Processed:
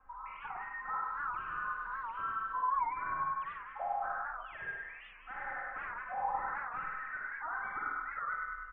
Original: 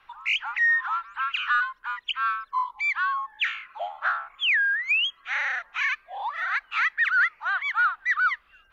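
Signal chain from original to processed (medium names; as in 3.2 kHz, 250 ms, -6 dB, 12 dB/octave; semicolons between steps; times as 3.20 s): 1.01–3.10 s: zero-crossing glitches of -23.5 dBFS; compression 6:1, threshold -29 dBFS, peak gain reduction 10.5 dB; comb 3.9 ms, depth 90%; feedback delay 100 ms, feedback 60%, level -4 dB; saturation -23.5 dBFS, distortion -15 dB; low-pass 1.3 kHz 24 dB/octave; bass shelf 110 Hz +10 dB; Schroeder reverb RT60 0.69 s, DRR -1 dB; warped record 78 rpm, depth 160 cents; trim -6.5 dB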